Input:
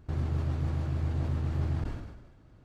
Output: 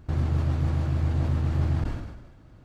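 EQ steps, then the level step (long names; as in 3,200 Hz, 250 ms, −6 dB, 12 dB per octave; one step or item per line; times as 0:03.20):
parametric band 410 Hz −4 dB 0.2 octaves
+5.5 dB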